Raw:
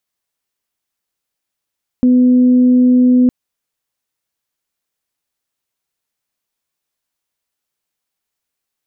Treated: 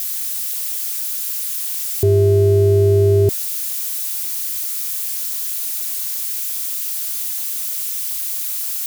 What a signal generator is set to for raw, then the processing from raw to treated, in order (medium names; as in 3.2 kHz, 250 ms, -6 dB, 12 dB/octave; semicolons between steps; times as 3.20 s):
steady additive tone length 1.26 s, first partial 250 Hz, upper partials -18 dB, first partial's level -6.5 dB
zero-crossing glitches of -17 dBFS; ring modulator 150 Hz